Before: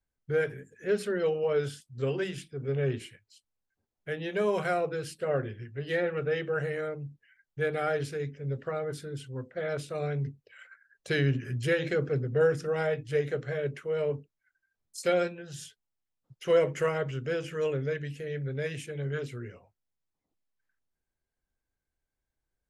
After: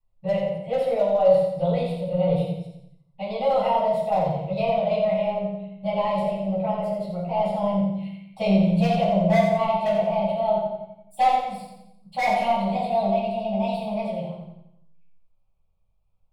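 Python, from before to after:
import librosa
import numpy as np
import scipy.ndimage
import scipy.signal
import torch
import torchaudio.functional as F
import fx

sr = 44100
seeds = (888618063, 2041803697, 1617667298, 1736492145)

p1 = fx.speed_glide(x, sr, from_pct=125, to_pct=153)
p2 = np.clip(10.0 ** (33.0 / 20.0) * p1, -1.0, 1.0) / 10.0 ** (33.0 / 20.0)
p3 = p1 + (p2 * 10.0 ** (-10.5 / 20.0))
p4 = scipy.signal.lfilter(np.full(7, 1.0 / 7), 1.0, p3)
p5 = fx.fixed_phaser(p4, sr, hz=710.0, stages=4)
p6 = 10.0 ** (-20.5 / 20.0) * (np.abs((p5 / 10.0 ** (-20.5 / 20.0) + 3.0) % 4.0 - 2.0) - 1.0)
p7 = p6 + fx.echo_feedback(p6, sr, ms=87, feedback_pct=47, wet_db=-6.5, dry=0)
p8 = fx.room_shoebox(p7, sr, seeds[0], volume_m3=660.0, walls='furnished', distance_m=9.1)
y = p8 * 10.0 ** (-4.0 / 20.0)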